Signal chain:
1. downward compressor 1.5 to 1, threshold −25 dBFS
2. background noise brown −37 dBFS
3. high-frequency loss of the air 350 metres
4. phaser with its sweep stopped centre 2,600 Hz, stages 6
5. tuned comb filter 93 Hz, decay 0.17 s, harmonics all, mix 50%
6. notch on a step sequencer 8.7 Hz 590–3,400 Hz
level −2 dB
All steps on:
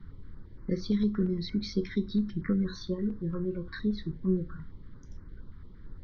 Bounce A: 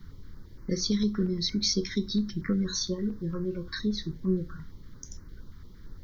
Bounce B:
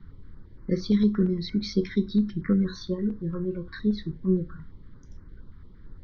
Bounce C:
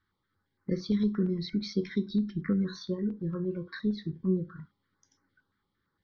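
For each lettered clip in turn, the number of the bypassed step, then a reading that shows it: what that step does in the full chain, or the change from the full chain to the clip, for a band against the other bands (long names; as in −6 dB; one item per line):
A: 3, 4 kHz band +11.5 dB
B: 1, average gain reduction 3.0 dB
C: 2, change in momentary loudness spread −16 LU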